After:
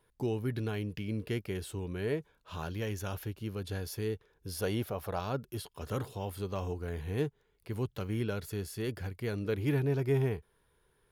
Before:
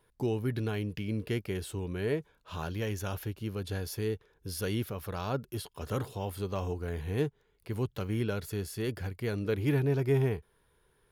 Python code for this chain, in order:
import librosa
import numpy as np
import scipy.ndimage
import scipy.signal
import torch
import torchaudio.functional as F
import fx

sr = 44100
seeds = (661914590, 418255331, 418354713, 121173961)

y = fx.peak_eq(x, sr, hz=710.0, db=10.0, octaves=0.98, at=(4.54, 5.2))
y = y * librosa.db_to_amplitude(-2.0)